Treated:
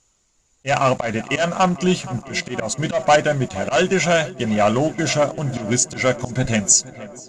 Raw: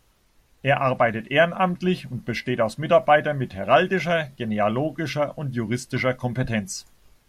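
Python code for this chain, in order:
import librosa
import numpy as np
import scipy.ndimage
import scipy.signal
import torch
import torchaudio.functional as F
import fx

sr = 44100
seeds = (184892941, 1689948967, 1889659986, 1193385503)

p1 = fx.low_shelf(x, sr, hz=210.0, db=-2.5)
p2 = fx.notch(p1, sr, hz=1700.0, q=12.0)
p3 = fx.leveller(p2, sr, passes=2)
p4 = fx.auto_swell(p3, sr, attack_ms=121.0)
p5 = fx.lowpass_res(p4, sr, hz=7000.0, q=11.0)
p6 = p5 + fx.echo_tape(p5, sr, ms=473, feedback_pct=77, wet_db=-16, lp_hz=2300.0, drive_db=3.0, wow_cents=15, dry=0)
y = F.gain(torch.from_numpy(p6), -1.0).numpy()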